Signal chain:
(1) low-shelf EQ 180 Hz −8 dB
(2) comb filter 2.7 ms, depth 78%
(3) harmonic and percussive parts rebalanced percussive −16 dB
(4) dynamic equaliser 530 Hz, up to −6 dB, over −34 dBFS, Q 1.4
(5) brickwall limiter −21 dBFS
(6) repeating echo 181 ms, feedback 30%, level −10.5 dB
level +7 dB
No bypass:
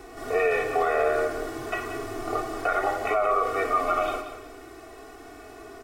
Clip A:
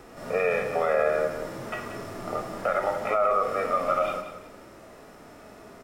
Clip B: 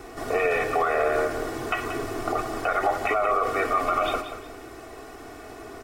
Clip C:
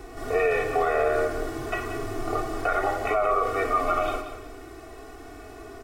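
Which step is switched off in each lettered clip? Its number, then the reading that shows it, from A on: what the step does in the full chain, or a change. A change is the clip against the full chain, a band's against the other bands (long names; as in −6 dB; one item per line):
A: 2, 125 Hz band +4.5 dB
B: 3, 500 Hz band −2.5 dB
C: 1, 125 Hz band +6.0 dB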